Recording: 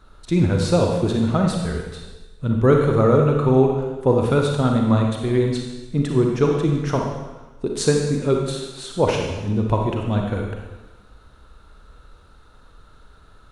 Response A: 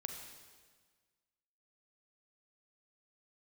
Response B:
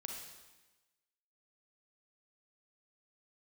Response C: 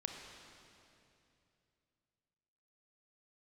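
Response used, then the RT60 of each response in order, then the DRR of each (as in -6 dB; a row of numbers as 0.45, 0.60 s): B; 1.5, 1.1, 2.7 s; 3.5, 1.0, 2.5 dB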